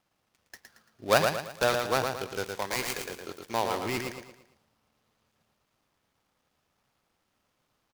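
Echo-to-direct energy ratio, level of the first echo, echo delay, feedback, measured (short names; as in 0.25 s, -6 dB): -4.5 dB, -5.0 dB, 0.113 s, 39%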